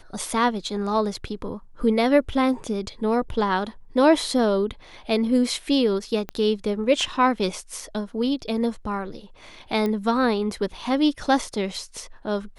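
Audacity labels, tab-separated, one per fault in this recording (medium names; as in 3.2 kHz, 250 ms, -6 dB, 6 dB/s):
6.290000	6.290000	pop -17 dBFS
9.860000	9.860000	pop -15 dBFS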